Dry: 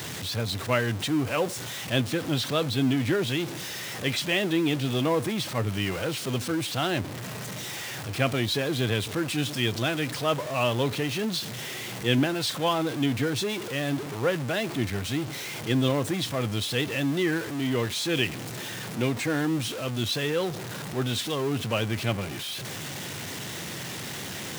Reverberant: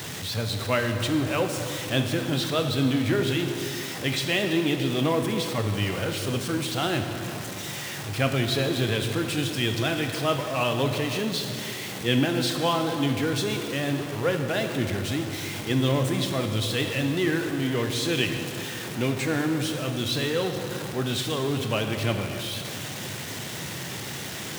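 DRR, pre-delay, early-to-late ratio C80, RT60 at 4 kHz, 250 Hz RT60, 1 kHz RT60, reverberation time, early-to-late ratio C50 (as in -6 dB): 5.0 dB, 22 ms, 6.5 dB, 2.3 s, 3.1 s, 2.6 s, 2.7 s, 6.0 dB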